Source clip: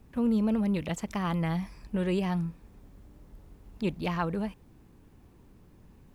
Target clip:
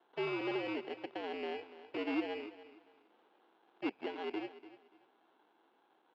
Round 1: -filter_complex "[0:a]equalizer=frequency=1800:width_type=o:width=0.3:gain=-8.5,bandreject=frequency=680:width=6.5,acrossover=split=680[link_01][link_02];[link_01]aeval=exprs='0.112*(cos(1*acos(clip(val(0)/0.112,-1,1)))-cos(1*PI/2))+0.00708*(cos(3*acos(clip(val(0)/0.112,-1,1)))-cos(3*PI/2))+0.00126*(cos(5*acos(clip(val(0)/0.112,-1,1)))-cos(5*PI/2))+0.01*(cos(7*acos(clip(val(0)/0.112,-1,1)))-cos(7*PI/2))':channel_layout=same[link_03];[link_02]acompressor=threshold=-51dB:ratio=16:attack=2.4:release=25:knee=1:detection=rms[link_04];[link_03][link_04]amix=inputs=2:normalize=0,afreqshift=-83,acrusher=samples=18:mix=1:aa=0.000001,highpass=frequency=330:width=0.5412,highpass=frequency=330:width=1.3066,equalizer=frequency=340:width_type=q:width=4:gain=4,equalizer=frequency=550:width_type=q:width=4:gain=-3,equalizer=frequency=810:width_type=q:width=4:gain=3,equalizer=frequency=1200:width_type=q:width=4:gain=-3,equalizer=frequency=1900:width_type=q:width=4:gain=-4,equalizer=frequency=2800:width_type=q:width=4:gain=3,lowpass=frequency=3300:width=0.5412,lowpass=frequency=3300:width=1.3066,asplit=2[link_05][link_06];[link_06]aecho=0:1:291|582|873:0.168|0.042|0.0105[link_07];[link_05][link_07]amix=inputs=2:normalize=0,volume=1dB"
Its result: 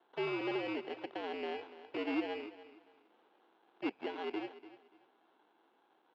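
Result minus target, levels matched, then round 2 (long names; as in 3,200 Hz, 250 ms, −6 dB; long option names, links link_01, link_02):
downward compressor: peak gain reduction −6.5 dB
-filter_complex "[0:a]equalizer=frequency=1800:width_type=o:width=0.3:gain=-8.5,bandreject=frequency=680:width=6.5,acrossover=split=680[link_01][link_02];[link_01]aeval=exprs='0.112*(cos(1*acos(clip(val(0)/0.112,-1,1)))-cos(1*PI/2))+0.00708*(cos(3*acos(clip(val(0)/0.112,-1,1)))-cos(3*PI/2))+0.00126*(cos(5*acos(clip(val(0)/0.112,-1,1)))-cos(5*PI/2))+0.01*(cos(7*acos(clip(val(0)/0.112,-1,1)))-cos(7*PI/2))':channel_layout=same[link_03];[link_02]acompressor=threshold=-58dB:ratio=16:attack=2.4:release=25:knee=1:detection=rms[link_04];[link_03][link_04]amix=inputs=2:normalize=0,afreqshift=-83,acrusher=samples=18:mix=1:aa=0.000001,highpass=frequency=330:width=0.5412,highpass=frequency=330:width=1.3066,equalizer=frequency=340:width_type=q:width=4:gain=4,equalizer=frequency=550:width_type=q:width=4:gain=-3,equalizer=frequency=810:width_type=q:width=4:gain=3,equalizer=frequency=1200:width_type=q:width=4:gain=-3,equalizer=frequency=1900:width_type=q:width=4:gain=-4,equalizer=frequency=2800:width_type=q:width=4:gain=3,lowpass=frequency=3300:width=0.5412,lowpass=frequency=3300:width=1.3066,asplit=2[link_05][link_06];[link_06]aecho=0:1:291|582|873:0.168|0.042|0.0105[link_07];[link_05][link_07]amix=inputs=2:normalize=0,volume=1dB"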